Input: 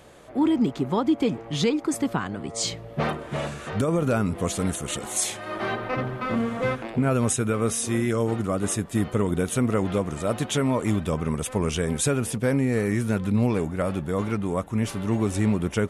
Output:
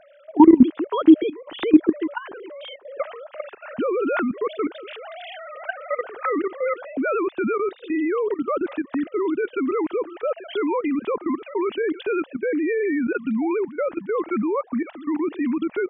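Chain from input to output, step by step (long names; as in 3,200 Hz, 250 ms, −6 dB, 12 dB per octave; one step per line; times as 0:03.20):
three sine waves on the formant tracks
output level in coarse steps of 15 dB
level +8 dB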